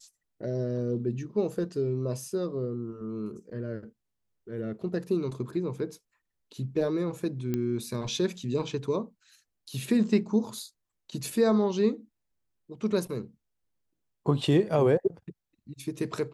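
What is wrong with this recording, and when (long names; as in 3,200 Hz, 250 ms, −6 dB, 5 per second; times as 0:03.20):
0:07.54: click −17 dBFS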